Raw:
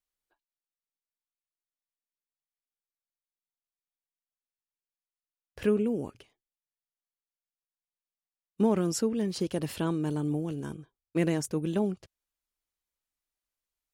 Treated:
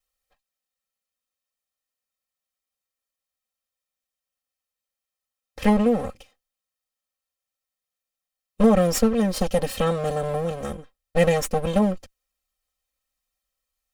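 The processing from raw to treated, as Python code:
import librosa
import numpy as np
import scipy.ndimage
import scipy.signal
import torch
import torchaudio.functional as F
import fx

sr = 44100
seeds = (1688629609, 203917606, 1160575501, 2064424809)

y = fx.lower_of_two(x, sr, delay_ms=1.6)
y = y + 0.77 * np.pad(y, (int(3.8 * sr / 1000.0), 0))[:len(y)]
y = F.gain(torch.from_numpy(y), 7.0).numpy()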